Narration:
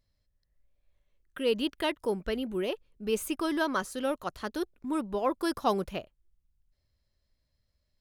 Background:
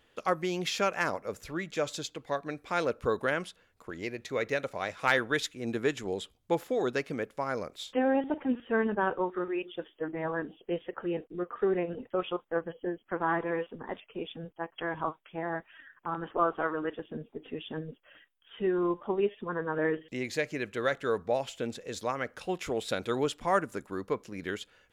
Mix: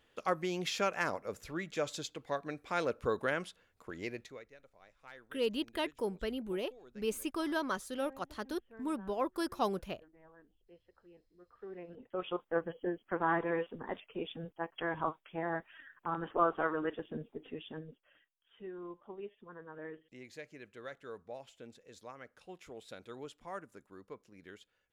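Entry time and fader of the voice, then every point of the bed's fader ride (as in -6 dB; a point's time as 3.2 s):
3.95 s, -5.5 dB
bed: 4.18 s -4 dB
4.5 s -27.5 dB
11.35 s -27.5 dB
12.4 s -2 dB
17.22 s -2 dB
18.68 s -17 dB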